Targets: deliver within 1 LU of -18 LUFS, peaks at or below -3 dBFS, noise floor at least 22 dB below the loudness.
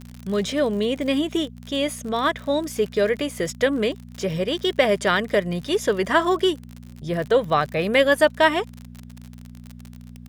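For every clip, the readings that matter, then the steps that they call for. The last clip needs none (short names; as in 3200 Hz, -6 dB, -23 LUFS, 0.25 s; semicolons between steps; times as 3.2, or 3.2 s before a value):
ticks 52/s; hum 60 Hz; harmonics up to 240 Hz; hum level -39 dBFS; loudness -22.0 LUFS; peak -3.5 dBFS; loudness target -18.0 LUFS
-> de-click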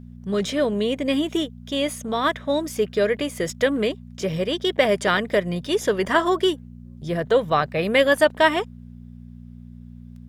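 ticks 1.9/s; hum 60 Hz; harmonics up to 240 Hz; hum level -39 dBFS
-> de-hum 60 Hz, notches 4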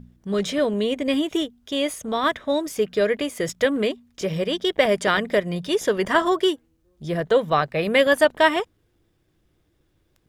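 hum none; loudness -22.5 LUFS; peak -3.5 dBFS; loudness target -18.0 LUFS
-> gain +4.5 dB; limiter -3 dBFS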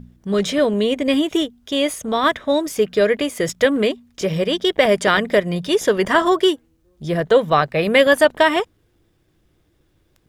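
loudness -18.0 LUFS; peak -3.0 dBFS; noise floor -63 dBFS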